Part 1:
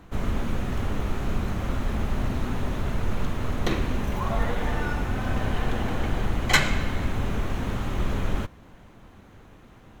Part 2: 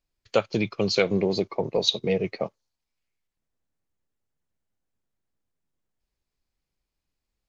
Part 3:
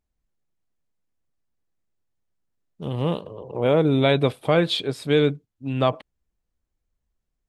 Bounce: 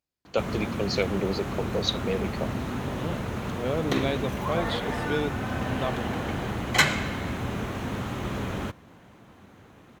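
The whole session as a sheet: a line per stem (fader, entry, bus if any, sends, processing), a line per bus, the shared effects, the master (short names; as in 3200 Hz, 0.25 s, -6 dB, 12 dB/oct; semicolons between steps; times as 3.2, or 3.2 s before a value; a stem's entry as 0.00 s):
0.0 dB, 0.25 s, no send, dry
-4.5 dB, 0.00 s, no send, dry
-10.0 dB, 0.00 s, no send, dry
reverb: off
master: HPF 98 Hz 12 dB/oct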